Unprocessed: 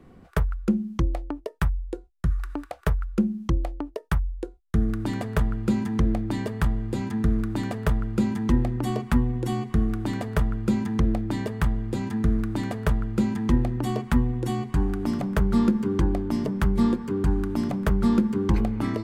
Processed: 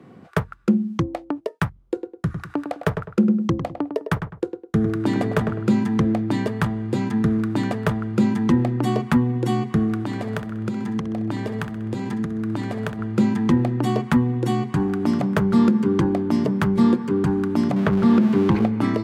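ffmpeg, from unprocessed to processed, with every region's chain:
-filter_complex "[0:a]asettb=1/sr,asplit=3[a][b][c];[a]atrim=end=1.864[d];[b]atrim=start=1.86:end=5.67,asetpts=PTS-STARTPTS,afade=t=in:d=0.004:c=qsin,afade=t=out:st=3.806:d=0.004:c=qsin,equalizer=f=450:w=1.7:g=3,asplit=2[e][f];[f]adelay=103,lowpass=f=1.8k:p=1,volume=-7.5dB,asplit=2[g][h];[h]adelay=103,lowpass=f=1.8k:p=1,volume=0.34,asplit=2[i][j];[j]adelay=103,lowpass=f=1.8k:p=1,volume=0.34,asplit=2[k][l];[l]adelay=103,lowpass=f=1.8k:p=1,volume=0.34[m];[e][g][i][k][m]amix=inputs=5:normalize=0,atrim=end_sample=168021[n];[c]atrim=start=5.666[o];[d][n]acrossfade=d=0.004:c1=hsin:c2=qsin[p];[p][o]acrossfade=d=0.004:c1=qsin:c2=hsin,asettb=1/sr,asplit=3[q][r][s];[q]atrim=end=10.034[t];[r]atrim=start=10.03:end=12.99,asetpts=PTS-STARTPTS,afade=t=in:d=0.004:c=qsin,afade=t=out:st=2.956:d=0.004:c=qsin,highpass=45,acompressor=threshold=-28dB:ratio=6:attack=3.2:release=140:knee=1:detection=peak,aecho=1:1:64|128|192|256|320|384:0.237|0.135|0.077|0.0439|0.025|0.0143,atrim=end_sample=130536[u];[s]atrim=start=12.986[v];[t][u]acrossfade=d=0.004:c1=hsin:c2=qsin[w];[w][v]acrossfade=d=0.004:c1=qsin:c2=hsin,asettb=1/sr,asplit=3[x][y][z];[x]atrim=end=17.764[aa];[y]atrim=start=17.76:end=18.67,asetpts=PTS-STARTPTS,afade=t=in:d=0.004:c=qsin,afade=t=out:st=0.906:d=0.004:c=qsin,aeval=exprs='val(0)+0.5*0.0282*sgn(val(0))':c=same,acrossover=split=4300[ab][ac];[ac]acompressor=threshold=-52dB:ratio=4:attack=1:release=60[ad];[ab][ad]amix=inputs=2:normalize=0[ae];[z]atrim=start=18.666[af];[aa][ae]acrossfade=d=0.004:c1=hsin:c2=qsin[ag];[ag][af]acrossfade=d=0.004:c1=qsin:c2=hsin,highpass=f=110:w=0.5412,highpass=f=110:w=1.3066,highshelf=f=8.3k:g=-9.5,alimiter=level_in=12.5dB:limit=-1dB:release=50:level=0:latency=1,volume=-6.5dB"

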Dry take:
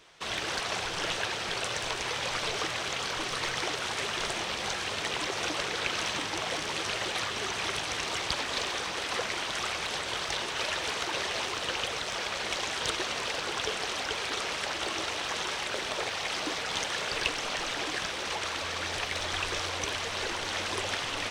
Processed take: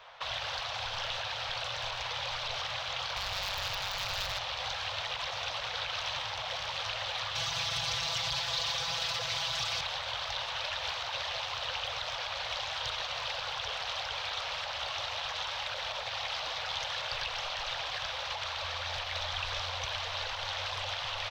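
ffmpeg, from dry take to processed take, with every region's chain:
-filter_complex "[0:a]asettb=1/sr,asplit=3[a][b][c];[a]atrim=end=3.164[d];[b]atrim=start=3.16:end=4.39,asetpts=PTS-STARTPTS,afade=t=in:d=0.004:c=qsin,afade=t=out:st=1.226:d=0.004:c=qsin,lowpass=f=1.5k:p=1,aeval=exprs='0.0891*sin(PI/2*8.91*val(0)/0.0891)':c=same,aeval=exprs='val(0)*sin(2*PI*97*n/s)':c=same[e];[c]atrim=start=4.386[f];[d][e]acrossfade=d=0.004:c1=hsin:c2=qsin[g];[g][f]acrossfade=d=0.004:c1=qsin:c2=hsin,asettb=1/sr,asplit=3[h][i][j];[h]atrim=end=7.354[k];[i]atrim=start=7.35:end=9.81,asetpts=PTS-STARTPTS,afade=t=in:d=0.004:c=qsin,afade=t=out:st=2.456:d=0.004:c=qsin,highpass=69,bass=f=250:g=11,treble=f=4k:g=10,aecho=1:1:6:0.92,atrim=end_sample=108486[l];[j]atrim=start=9.806[m];[k][l]acrossfade=d=0.004:c1=hsin:c2=qsin[n];[n][m]acrossfade=d=0.004:c1=qsin:c2=hsin,firequalizer=gain_entry='entry(120,0);entry(210,-20);entry(360,-18);entry(520,7);entry(830,11);entry(2000,3);entry(3700,3);entry(8900,-22);entry(15000,-5)':delay=0.05:min_phase=1,alimiter=limit=-18dB:level=0:latency=1:release=36,acrossover=split=190|3000[o][p][q];[p]acompressor=threshold=-39dB:ratio=6[r];[o][r][q]amix=inputs=3:normalize=0"

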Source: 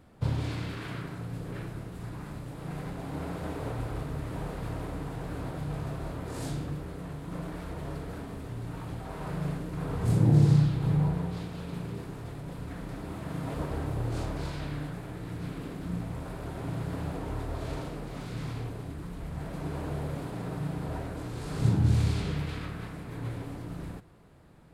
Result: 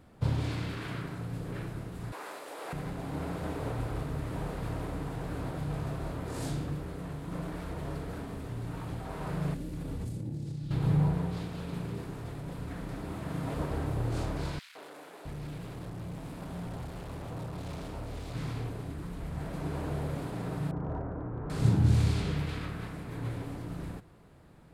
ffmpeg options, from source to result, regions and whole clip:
-filter_complex "[0:a]asettb=1/sr,asplit=3[a][b][c];[a]atrim=end=2.124[d];[b]atrim=start=2.12:end=2.73,asetpts=PTS-STARTPTS,afade=t=in:d=0.004:c=qsin,afade=t=out:st=0.606:d=0.004:c=qsin,highpass=f=430:w=0.5412,highpass=f=430:w=1.3066,acontrast=55[e];[c]atrim=start=2.726[f];[d][e]acrossfade=d=0.004:c1=hsin:c2=qsin[g];[g][f]acrossfade=d=0.004:c1=qsin:c2=hsin,asettb=1/sr,asplit=3[h][i][j];[h]atrim=end=9.544[k];[i]atrim=start=9.54:end=10.71,asetpts=PTS-STARTPTS,afade=t=in:d=0.004:c=qsin,afade=t=out:st=1.166:d=0.004:c=qsin,equalizer=f=1.1k:t=o:w=2.1:g=-11.5,acompressor=threshold=-31dB:ratio=10:attack=3.2:release=140:knee=1:detection=peak,aecho=1:1:3.5:0.34,atrim=end_sample=51597[l];[j]atrim=start=10.706[m];[k][l]acrossfade=d=0.004:c1=hsin:c2=qsin[n];[n][m]acrossfade=d=0.004:c1=qsin:c2=hsin,asettb=1/sr,asplit=3[o][p][q];[o]atrim=end=14.594[r];[p]atrim=start=14.59:end=18.35,asetpts=PTS-STARTPTS,afade=t=in:d=0.004:c=qsin,afade=t=out:st=3.756:d=0.004:c=qsin,volume=36dB,asoftclip=hard,volume=-36dB,acrossover=split=340|1600[s][t][u];[t]adelay=160[v];[s]adelay=660[w];[w][v][u]amix=inputs=3:normalize=0,atrim=end_sample=165816[x];[q]atrim=start=18.346[y];[r][x]acrossfade=d=0.004:c1=hsin:c2=qsin[z];[z][y]acrossfade=d=0.004:c1=qsin:c2=hsin,asettb=1/sr,asplit=3[aa][ab][ac];[aa]atrim=end=20.714[ad];[ab]atrim=start=20.71:end=21.5,asetpts=PTS-STARTPTS,afade=t=in:d=0.004:c=qsin,afade=t=out:st=0.786:d=0.004:c=qsin,lowpass=f=1.4k:w=0.5412,lowpass=f=1.4k:w=1.3066,asoftclip=type=hard:threshold=-28dB[ae];[ac]atrim=start=21.496[af];[ad][ae]acrossfade=d=0.004:c1=hsin:c2=qsin[ag];[ag][af]acrossfade=d=0.004:c1=qsin:c2=hsin"

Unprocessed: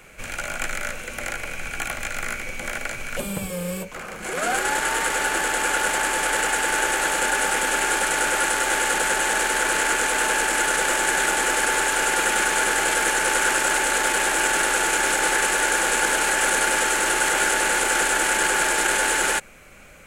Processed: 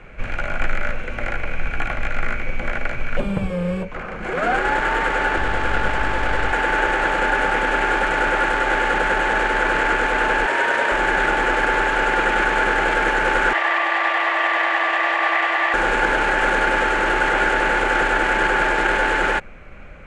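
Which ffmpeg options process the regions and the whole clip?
-filter_complex "[0:a]asettb=1/sr,asplit=3[a][b][c];[a]atrim=end=5.364[d];[b]atrim=start=5.36:end=6.53,asetpts=PTS-STARTPTS,afade=t=in:d=0.004:c=qsin,afade=t=out:st=1.166:d=0.004:c=qsin,lowpass=12k,aeval=exprs='val(0)+0.0141*(sin(2*PI*50*n/s)+sin(2*PI*2*50*n/s)/2+sin(2*PI*3*50*n/s)/3+sin(2*PI*4*50*n/s)/4+sin(2*PI*5*50*n/s)/5)':c=same,aeval=exprs='clip(val(0),-1,0.0398)':c=same[e];[c]atrim=start=6.526[f];[d][e]acrossfade=d=0.004:c1=hsin:c2=qsin[g];[g][f]acrossfade=d=0.004:c1=qsin:c2=hsin,asettb=1/sr,asplit=3[h][i][j];[h]atrim=end=10.464[k];[i]atrim=start=10.46:end=10.92,asetpts=PTS-STARTPTS,afade=t=in:d=0.004:c=qsin,afade=t=out:st=0.456:d=0.004:c=qsin,highpass=110,afreqshift=61[l];[j]atrim=start=10.916[m];[k][l]acrossfade=d=0.004:c1=hsin:c2=qsin[n];[n][m]acrossfade=d=0.004:c1=qsin:c2=hsin,asettb=1/sr,asplit=3[o][p][q];[o]atrim=end=13.534[r];[p]atrim=start=13.53:end=15.74,asetpts=PTS-STARTPTS,afade=t=in:d=0.004:c=qsin,afade=t=out:st=2.206:d=0.004:c=qsin,afreqshift=300,lowpass=4.6k[s];[q]atrim=start=15.736[t];[r][s]acrossfade=d=0.004:c1=hsin:c2=qsin[u];[u][t]acrossfade=d=0.004:c1=qsin:c2=hsin,lowpass=2.2k,lowshelf=f=100:g=10,volume=4.5dB"

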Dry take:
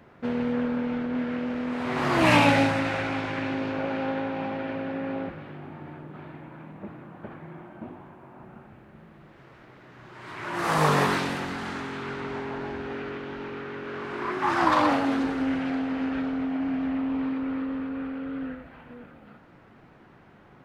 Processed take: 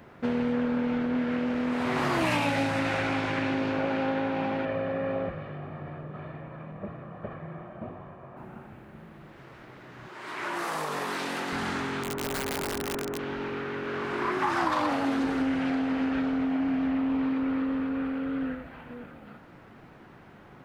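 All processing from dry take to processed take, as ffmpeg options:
-filter_complex "[0:a]asettb=1/sr,asplit=3[a][b][c];[a]atrim=end=4.654[d];[b]atrim=start=4.65:end=8.37,asetpts=PTS-STARTPTS,afade=t=in:d=0.004:c=qsin,afade=t=out:st=3.716:d=0.004:c=qsin,lowpass=f=1.9k:p=1,aecho=1:1:1.7:0.56,atrim=end_sample=164052[e];[c]atrim=start=8.366[f];[d][e]acrossfade=d=0.004:c1=hsin:c2=qsin[g];[g][f]acrossfade=d=0.004:c1=qsin:c2=hsin,asettb=1/sr,asplit=3[h][i][j];[h]atrim=end=10.084[k];[i]atrim=start=10.08:end=11.53,asetpts=PTS-STARTPTS,afade=t=in:d=0.004:c=qsin,afade=t=out:st=1.446:d=0.004:c=qsin,highpass=250,acompressor=threshold=-30dB:ratio=16:attack=3.2:release=140:knee=1:detection=peak[l];[j]atrim=start=11.526[m];[k][l]acrossfade=d=0.004:c1=hsin:c2=qsin[n];[n][m]acrossfade=d=0.004:c1=qsin:c2=hsin,asettb=1/sr,asplit=3[o][p][q];[o]atrim=end=12.034[r];[p]atrim=start=12.03:end=13.19,asetpts=PTS-STARTPTS,afade=t=in:d=0.004:c=qsin,afade=t=out:st=1.156:d=0.004:c=qsin,lowpass=1.1k,equalizer=f=100:t=o:w=0.83:g=-3,aeval=exprs='(mod(26.6*val(0)+1,2)-1)/26.6':c=same[s];[q]atrim=start=13.186[t];[r][s]acrossfade=d=0.004:c1=hsin:c2=qsin[u];[u][t]acrossfade=d=0.004:c1=qsin:c2=hsin,highshelf=f=7.4k:g=5.5,acompressor=threshold=-26dB:ratio=6,volume=2.5dB"

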